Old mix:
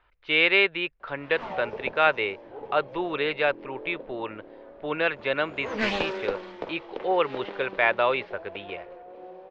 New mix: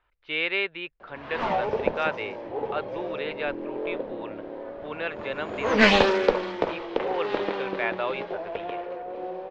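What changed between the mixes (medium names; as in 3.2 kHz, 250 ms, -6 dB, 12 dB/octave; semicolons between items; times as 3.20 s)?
speech -6.5 dB; background +9.5 dB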